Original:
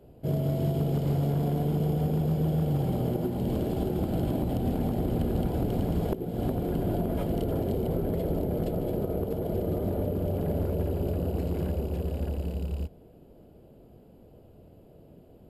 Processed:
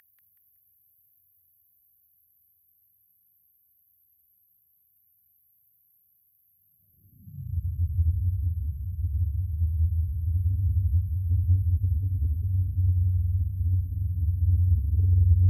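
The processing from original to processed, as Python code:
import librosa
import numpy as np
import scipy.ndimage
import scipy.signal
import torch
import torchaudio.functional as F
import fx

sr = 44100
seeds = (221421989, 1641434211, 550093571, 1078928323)

y = scipy.signal.sosfilt(scipy.signal.cheby2(4, 70, [380.0, 5400.0], 'bandstop', fs=sr, output='sos'), x)
y = fx.paulstretch(y, sr, seeds[0], factor=4.8, window_s=0.5, from_s=7.47)
y = fx.filter_sweep_highpass(y, sr, from_hz=1800.0, to_hz=80.0, start_s=6.43, end_s=7.6, q=4.6)
y = fx.cheby_harmonics(y, sr, harmonics=(5,), levels_db=(-31,), full_scale_db=-15.0)
y = fx.echo_feedback(y, sr, ms=187, feedback_pct=30, wet_db=-4.0)
y = y * librosa.db_to_amplitude(1.0)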